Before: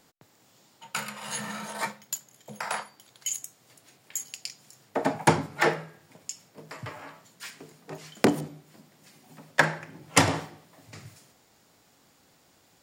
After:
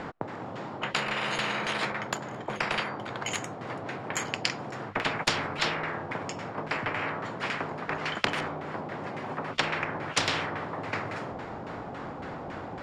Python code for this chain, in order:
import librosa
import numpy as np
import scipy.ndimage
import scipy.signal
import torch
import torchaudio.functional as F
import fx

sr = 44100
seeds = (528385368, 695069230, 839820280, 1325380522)

y = fx.filter_lfo_lowpass(x, sr, shape='saw_down', hz=3.6, low_hz=810.0, high_hz=1800.0, q=1.1)
y = fx.spectral_comp(y, sr, ratio=10.0)